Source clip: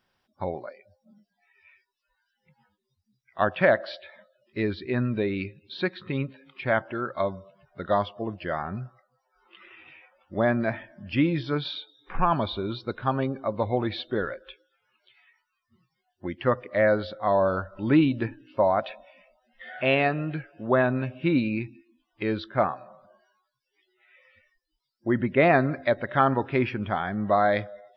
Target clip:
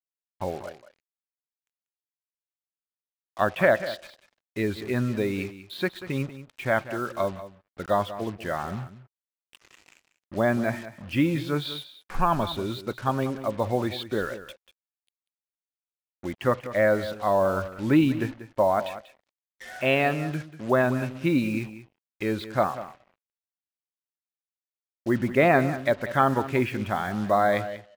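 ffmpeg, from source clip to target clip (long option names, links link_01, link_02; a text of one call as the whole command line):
ffmpeg -i in.wav -af "acrusher=bits=6:mix=0:aa=0.5,aecho=1:1:190:0.2" out.wav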